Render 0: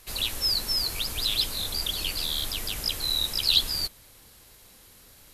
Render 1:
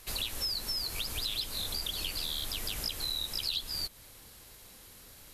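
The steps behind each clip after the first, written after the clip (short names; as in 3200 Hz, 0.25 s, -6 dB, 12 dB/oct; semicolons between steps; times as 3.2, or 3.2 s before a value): compressor 5:1, threshold -32 dBFS, peak gain reduction 14.5 dB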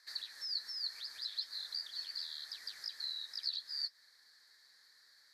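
flange 1.2 Hz, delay 1.2 ms, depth 8.4 ms, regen +73%; double band-pass 2800 Hz, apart 1.3 oct; gain +4.5 dB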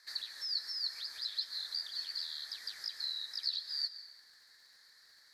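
crackle 47/s -58 dBFS; on a send at -12 dB: reverb RT60 1.2 s, pre-delay 85 ms; on the sum: gain +2.5 dB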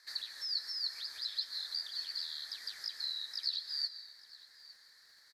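echo 0.86 s -20.5 dB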